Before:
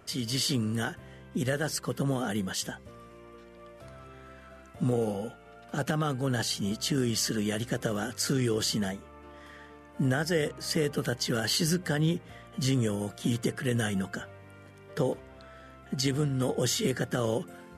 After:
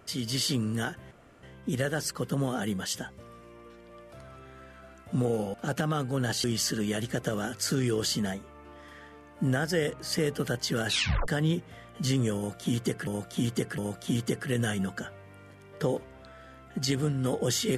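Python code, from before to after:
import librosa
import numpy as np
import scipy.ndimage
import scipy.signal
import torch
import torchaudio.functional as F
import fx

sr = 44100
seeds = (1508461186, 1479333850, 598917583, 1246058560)

y = fx.edit(x, sr, fx.insert_room_tone(at_s=1.11, length_s=0.32),
    fx.cut(start_s=5.22, length_s=0.42),
    fx.cut(start_s=6.54, length_s=0.48),
    fx.tape_stop(start_s=11.45, length_s=0.41),
    fx.repeat(start_s=12.94, length_s=0.71, count=3), tone=tone)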